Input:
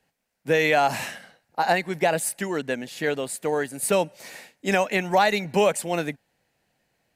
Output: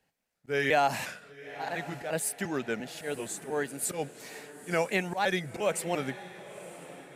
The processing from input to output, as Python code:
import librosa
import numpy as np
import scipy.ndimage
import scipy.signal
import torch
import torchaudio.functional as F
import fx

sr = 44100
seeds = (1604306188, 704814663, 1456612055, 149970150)

y = fx.pitch_trill(x, sr, semitones=-2.0, every_ms=350)
y = fx.auto_swell(y, sr, attack_ms=141.0)
y = fx.echo_diffused(y, sr, ms=953, feedback_pct=41, wet_db=-15.0)
y = y * librosa.db_to_amplitude(-4.5)